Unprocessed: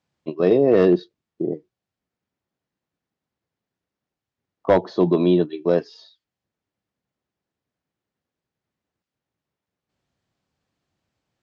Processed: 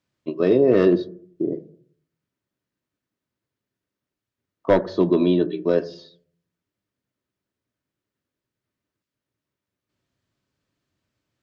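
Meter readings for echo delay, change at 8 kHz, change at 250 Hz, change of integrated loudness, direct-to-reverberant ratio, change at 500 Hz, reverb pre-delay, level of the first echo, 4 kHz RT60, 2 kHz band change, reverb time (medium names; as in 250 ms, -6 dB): no echo, no reading, 0.0 dB, -0.5 dB, 10.0 dB, -1.0 dB, 3 ms, no echo, 0.40 s, 0.0 dB, 0.55 s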